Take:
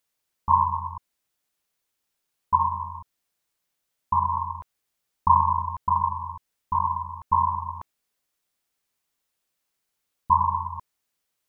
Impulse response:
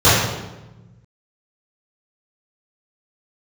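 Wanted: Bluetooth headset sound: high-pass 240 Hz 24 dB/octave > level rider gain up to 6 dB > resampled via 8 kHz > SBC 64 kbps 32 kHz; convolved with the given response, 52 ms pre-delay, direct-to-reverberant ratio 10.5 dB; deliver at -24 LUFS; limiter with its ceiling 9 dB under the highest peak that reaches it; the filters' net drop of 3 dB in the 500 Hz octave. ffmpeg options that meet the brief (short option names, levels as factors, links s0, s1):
-filter_complex "[0:a]equalizer=f=500:t=o:g=-4.5,alimiter=limit=0.168:level=0:latency=1,asplit=2[s0][s1];[1:a]atrim=start_sample=2205,adelay=52[s2];[s1][s2]afir=irnorm=-1:irlink=0,volume=0.0119[s3];[s0][s3]amix=inputs=2:normalize=0,highpass=f=240:w=0.5412,highpass=f=240:w=1.3066,dynaudnorm=m=2,aresample=8000,aresample=44100,volume=1.78" -ar 32000 -c:a sbc -b:a 64k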